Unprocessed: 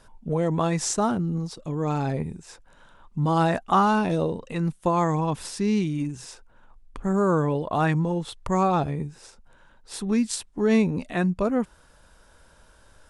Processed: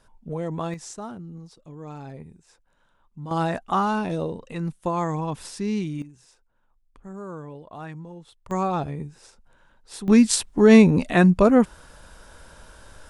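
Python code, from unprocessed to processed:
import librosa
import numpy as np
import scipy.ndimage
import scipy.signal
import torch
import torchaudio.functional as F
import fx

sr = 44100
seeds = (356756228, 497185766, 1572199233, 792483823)

y = fx.gain(x, sr, db=fx.steps((0.0, -5.5), (0.74, -12.5), (3.31, -3.0), (6.02, -15.0), (8.51, -3.0), (10.08, 8.0)))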